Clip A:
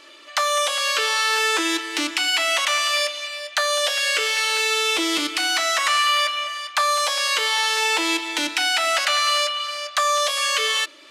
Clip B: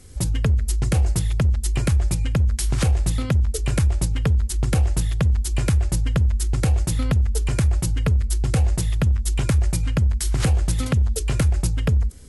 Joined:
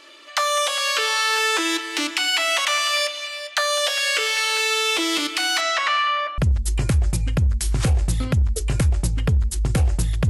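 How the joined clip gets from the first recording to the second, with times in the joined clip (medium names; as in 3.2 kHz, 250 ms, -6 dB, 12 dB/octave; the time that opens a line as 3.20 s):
clip A
5.60–6.38 s: low-pass 6.8 kHz -> 1.1 kHz
6.38 s: go over to clip B from 1.36 s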